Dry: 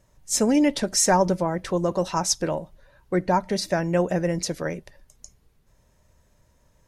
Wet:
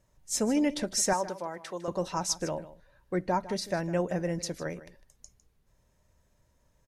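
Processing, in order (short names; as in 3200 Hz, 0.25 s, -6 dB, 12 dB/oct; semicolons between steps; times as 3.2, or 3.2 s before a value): 1.13–1.88 HPF 760 Hz 6 dB/oct; echo 0.154 s -16 dB; gain -7 dB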